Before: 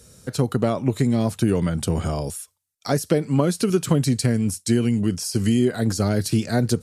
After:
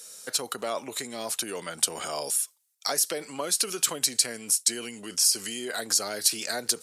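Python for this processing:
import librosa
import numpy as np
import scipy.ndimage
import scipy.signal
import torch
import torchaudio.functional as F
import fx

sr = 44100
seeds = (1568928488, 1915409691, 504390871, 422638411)

p1 = fx.over_compress(x, sr, threshold_db=-26.0, ratio=-1.0)
p2 = x + (p1 * librosa.db_to_amplitude(-1.0))
p3 = scipy.signal.sosfilt(scipy.signal.butter(2, 580.0, 'highpass', fs=sr, output='sos'), p2)
p4 = fx.high_shelf(p3, sr, hz=2500.0, db=9.0)
y = p4 * librosa.db_to_amplitude(-8.5)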